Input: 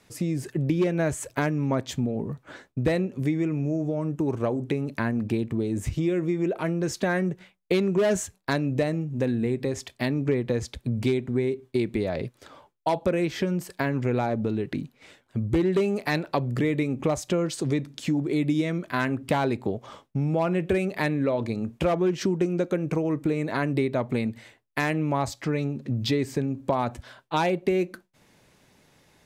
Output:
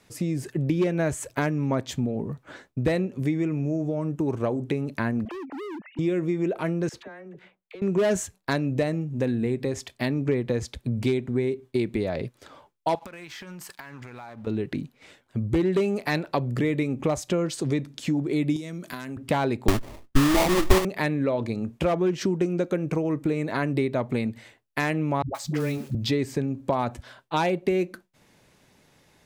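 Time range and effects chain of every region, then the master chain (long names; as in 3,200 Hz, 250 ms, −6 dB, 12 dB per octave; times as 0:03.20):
0:05.25–0:05.99: three sine waves on the formant tracks + hard clipping −34 dBFS
0:06.89–0:07.82: bass and treble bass −11 dB, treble −13 dB + downward compressor 8 to 1, threshold −38 dBFS + all-pass dispersion lows, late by 49 ms, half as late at 680 Hz
0:12.95–0:14.47: low shelf with overshoot 690 Hz −10 dB, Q 1.5 + downward compressor 20 to 1, threshold −44 dBFS + leveller curve on the samples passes 2
0:18.56–0:19.17: high-pass filter 190 Hz + bass and treble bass +10 dB, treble +14 dB + downward compressor 8 to 1, threshold −31 dBFS
0:19.68–0:20.85: lower of the sound and its delayed copy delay 3.1 ms + spectral tilt −3.5 dB per octave + sample-rate reduction 1,500 Hz, jitter 20%
0:25.22–0:25.95: one scale factor per block 5 bits + all-pass dispersion highs, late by 127 ms, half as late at 320 Hz
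whole clip: no processing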